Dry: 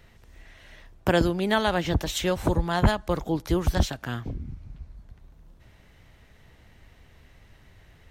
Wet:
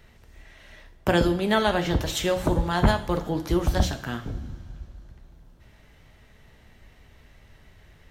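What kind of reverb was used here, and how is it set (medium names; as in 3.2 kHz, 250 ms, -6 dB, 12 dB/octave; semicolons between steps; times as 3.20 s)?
two-slope reverb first 0.51 s, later 3.2 s, from -18 dB, DRR 6 dB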